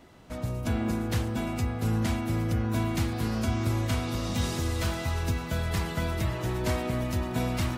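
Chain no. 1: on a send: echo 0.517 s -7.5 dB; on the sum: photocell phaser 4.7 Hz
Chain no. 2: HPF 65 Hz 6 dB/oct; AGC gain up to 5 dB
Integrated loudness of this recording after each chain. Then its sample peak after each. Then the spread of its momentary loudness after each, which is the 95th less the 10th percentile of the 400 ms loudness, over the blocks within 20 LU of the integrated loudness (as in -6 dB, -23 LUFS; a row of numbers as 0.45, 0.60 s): -33.5, -25.5 LUFS; -17.5, -11.5 dBFS; 3, 3 LU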